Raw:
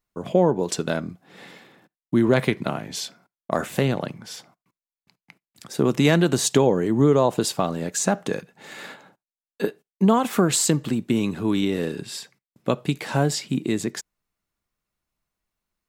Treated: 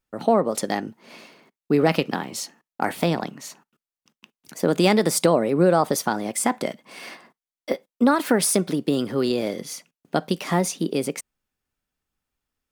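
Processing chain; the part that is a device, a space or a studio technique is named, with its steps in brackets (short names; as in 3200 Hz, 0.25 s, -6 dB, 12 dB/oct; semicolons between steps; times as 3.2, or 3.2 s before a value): nightcore (varispeed +25%)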